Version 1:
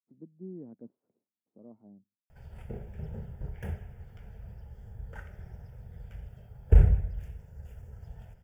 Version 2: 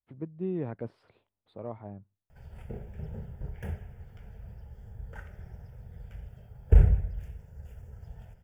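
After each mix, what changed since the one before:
speech: remove ladder band-pass 260 Hz, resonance 50%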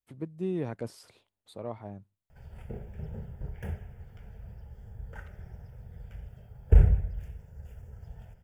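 speech: remove air absorption 470 m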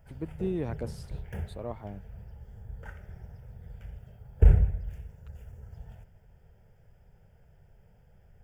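background: entry -2.30 s

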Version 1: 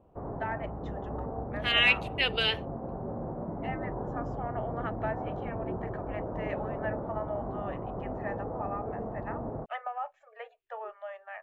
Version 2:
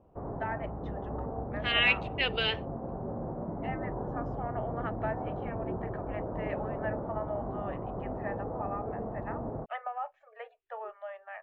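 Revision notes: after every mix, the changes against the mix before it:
master: add air absorption 150 m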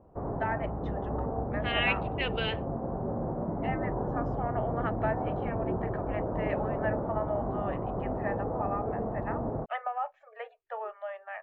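first voice +3.5 dB; second voice: add air absorption 280 m; background +4.0 dB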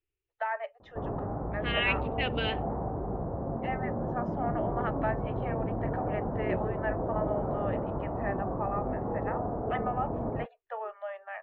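background: entry +0.80 s

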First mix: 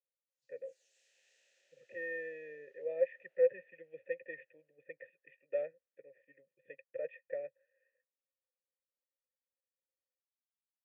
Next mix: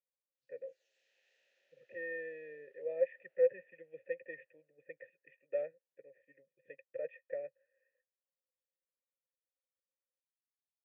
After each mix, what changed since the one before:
master: add air absorption 170 m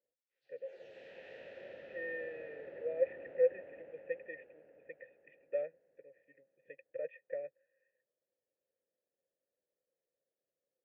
background: remove band-pass 6800 Hz, Q 2.9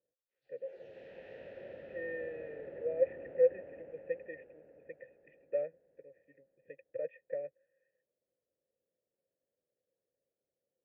master: add tilt -2.5 dB/oct

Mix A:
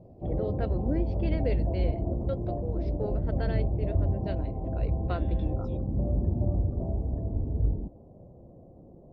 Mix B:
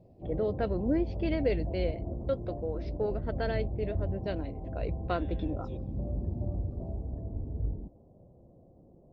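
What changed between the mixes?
first voice +3.5 dB; background -6.5 dB; reverb: on, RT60 2.0 s

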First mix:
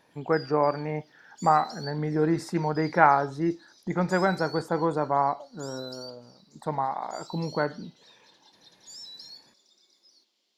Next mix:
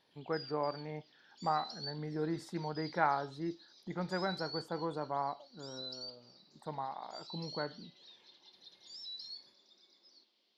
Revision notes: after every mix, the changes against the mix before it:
speech -12.0 dB; background: add Chebyshev low-pass 4500 Hz, order 3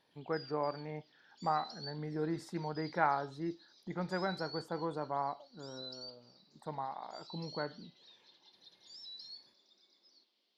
reverb: off

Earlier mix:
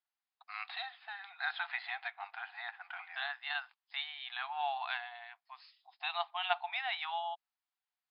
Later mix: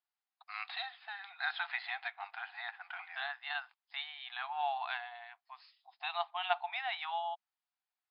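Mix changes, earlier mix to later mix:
second voice: add tilt -2 dB/oct; master: remove air absorption 57 m

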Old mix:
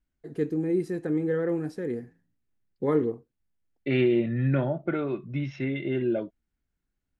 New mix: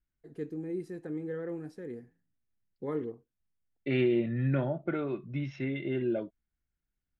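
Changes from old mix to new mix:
first voice -10.0 dB; second voice -4.0 dB

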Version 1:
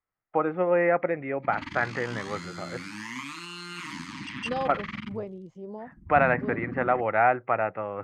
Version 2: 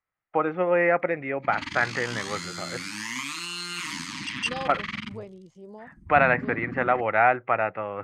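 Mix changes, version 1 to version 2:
second voice -5.0 dB; master: add high shelf 2500 Hz +12 dB

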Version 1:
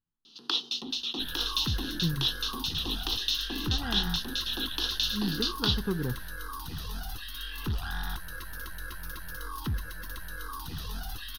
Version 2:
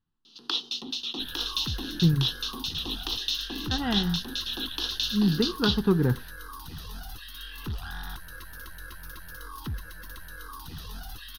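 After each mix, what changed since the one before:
speech +8.5 dB; second sound: send off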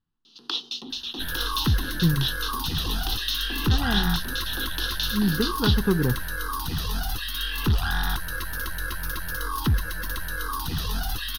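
second sound +12.0 dB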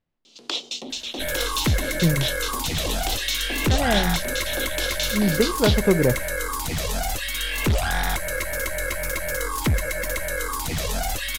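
master: remove fixed phaser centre 2200 Hz, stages 6

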